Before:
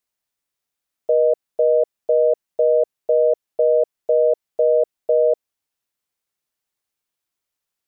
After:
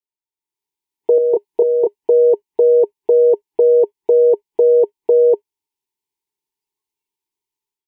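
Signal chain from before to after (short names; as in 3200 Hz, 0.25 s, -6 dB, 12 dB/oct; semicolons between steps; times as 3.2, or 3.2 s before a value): spectral noise reduction 16 dB; EQ curve 250 Hz 0 dB, 410 Hz +11 dB, 600 Hz -23 dB, 910 Hz +13 dB, 1300 Hz -16 dB, 2100 Hz 0 dB; AGC; 1.15–1.96 doubler 30 ms -3 dB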